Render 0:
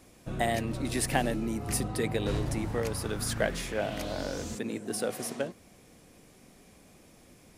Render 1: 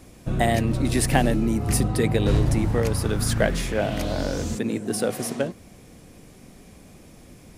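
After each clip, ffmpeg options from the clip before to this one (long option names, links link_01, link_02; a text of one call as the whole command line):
ffmpeg -i in.wav -af "lowshelf=frequency=240:gain=7.5,volume=5.5dB" out.wav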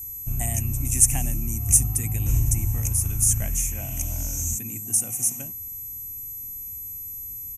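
ffmpeg -i in.wav -af "firequalizer=gain_entry='entry(100,0);entry(170,-14);entry(280,-14);entry(450,-29);entry(730,-15);entry(1600,-20);entry(2500,-6);entry(4200,-29);entry(6200,13);entry(14000,5)':delay=0.05:min_phase=1,aeval=exprs='val(0)+0.02*sin(2*PI*12000*n/s)':channel_layout=same,volume=1dB" out.wav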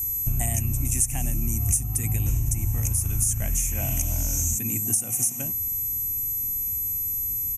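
ffmpeg -i in.wav -af "acompressor=threshold=-29dB:ratio=6,volume=8dB" out.wav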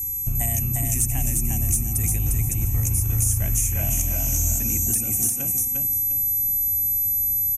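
ffmpeg -i in.wav -filter_complex "[0:a]acrossover=split=530|1400[link_01][link_02][link_03];[link_03]volume=14.5dB,asoftclip=hard,volume=-14.5dB[link_04];[link_01][link_02][link_04]amix=inputs=3:normalize=0,aecho=1:1:352|704|1056|1408:0.708|0.198|0.0555|0.0155" out.wav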